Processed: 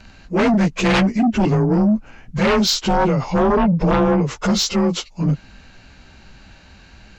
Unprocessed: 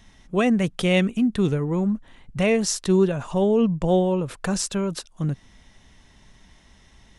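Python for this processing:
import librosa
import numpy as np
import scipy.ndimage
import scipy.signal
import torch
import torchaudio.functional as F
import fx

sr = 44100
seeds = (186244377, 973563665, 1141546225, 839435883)

y = fx.partial_stretch(x, sr, pct=90)
y = fx.fold_sine(y, sr, drive_db=11, ceiling_db=-8.0)
y = y * 10.0 ** (-4.0 / 20.0)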